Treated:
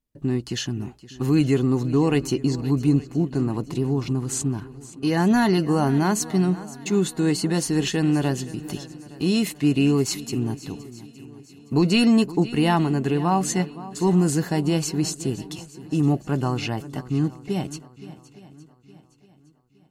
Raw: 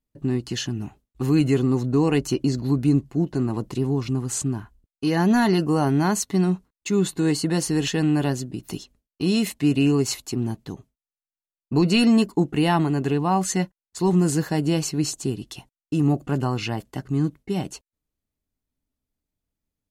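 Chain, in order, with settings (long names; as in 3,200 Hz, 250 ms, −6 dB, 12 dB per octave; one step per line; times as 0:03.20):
feedback echo with a long and a short gap by turns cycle 865 ms, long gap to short 1.5 to 1, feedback 35%, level −17 dB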